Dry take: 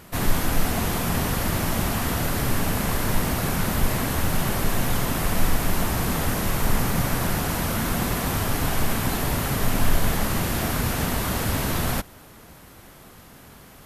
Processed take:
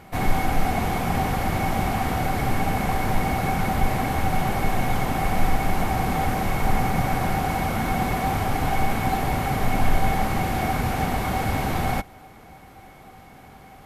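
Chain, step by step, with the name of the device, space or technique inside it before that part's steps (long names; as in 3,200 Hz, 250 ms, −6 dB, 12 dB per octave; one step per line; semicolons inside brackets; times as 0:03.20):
inside a helmet (high-shelf EQ 3,800 Hz −10 dB; hollow resonant body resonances 770/2,200 Hz, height 17 dB, ringing for 90 ms)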